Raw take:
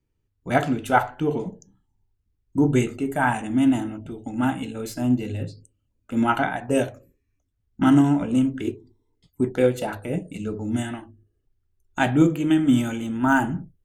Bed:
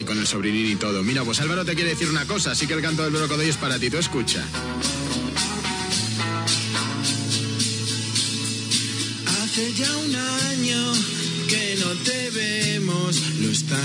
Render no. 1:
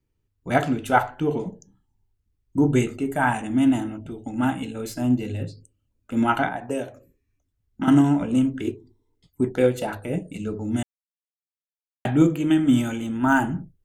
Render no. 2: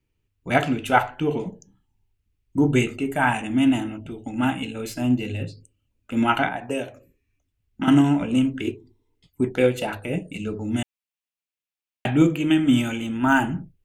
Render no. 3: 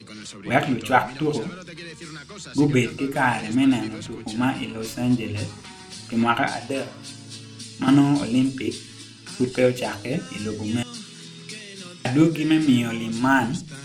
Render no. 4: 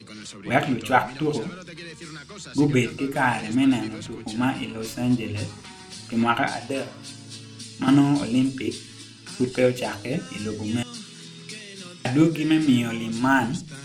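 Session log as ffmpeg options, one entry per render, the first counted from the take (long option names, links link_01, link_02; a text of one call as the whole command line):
ffmpeg -i in.wav -filter_complex "[0:a]asettb=1/sr,asplit=3[link_01][link_02][link_03];[link_01]atrim=end=6.484[link_04];[link_02]atrim=start=6.48:end=7.88,asetpts=PTS-STARTPTS,afade=type=in:duration=0.004:curve=qsin,afade=type=out:start_time=1.396:duration=0.004:curve=qsin,acrossover=split=200|1300[link_05][link_06][link_07];[link_05]acompressor=threshold=-44dB:ratio=4[link_08];[link_06]acompressor=threshold=-25dB:ratio=4[link_09];[link_07]acompressor=threshold=-41dB:ratio=4[link_10];[link_08][link_09][link_10]amix=inputs=3:normalize=0[link_11];[link_03]atrim=start=7.876[link_12];[link_04][link_11]acrossfade=duration=0.004:curve1=hsin:curve2=qsin[link_13];[link_13][link_12]acrossfade=duration=0.004:curve1=qsin:curve2=hsin,asplit=3[link_14][link_15][link_16];[link_14]atrim=end=10.83,asetpts=PTS-STARTPTS,afade=type=out:start_time=10.826:duration=0.004:curve=hsin[link_17];[link_15]atrim=start=10.83:end=12.05,asetpts=PTS-STARTPTS,volume=0[link_18];[link_16]atrim=start=12.05,asetpts=PTS-STARTPTS,afade=type=in:duration=0.004:curve=hsin[link_19];[link_17][link_18][link_19]concat=n=3:v=0:a=1" out.wav
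ffmpeg -i in.wav -af "equalizer=frequency=2600:width_type=o:width=0.72:gain=8.5" out.wav
ffmpeg -i in.wav -i bed.wav -filter_complex "[1:a]volume=-15.5dB[link_01];[0:a][link_01]amix=inputs=2:normalize=0" out.wav
ffmpeg -i in.wav -af "volume=-1dB" out.wav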